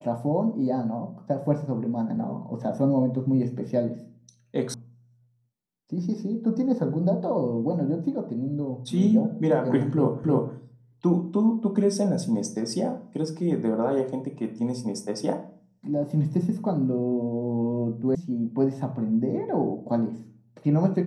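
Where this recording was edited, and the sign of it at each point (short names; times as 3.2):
4.74 sound cut off
10.24 repeat of the last 0.31 s
18.15 sound cut off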